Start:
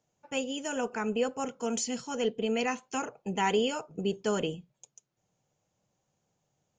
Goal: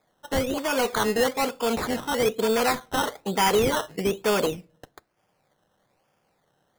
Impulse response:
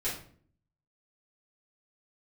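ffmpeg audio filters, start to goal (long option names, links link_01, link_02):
-filter_complex "[0:a]asplit=2[link_01][link_02];[link_02]highpass=frequency=720:poles=1,volume=17dB,asoftclip=type=tanh:threshold=-16dB[link_03];[link_01][link_03]amix=inputs=2:normalize=0,lowpass=frequency=2700:poles=1,volume=-6dB,acrusher=samples=15:mix=1:aa=0.000001:lfo=1:lforange=9:lforate=1.1,asplit=2[link_04][link_05];[1:a]atrim=start_sample=2205[link_06];[link_05][link_06]afir=irnorm=-1:irlink=0,volume=-28dB[link_07];[link_04][link_07]amix=inputs=2:normalize=0,volume=3dB"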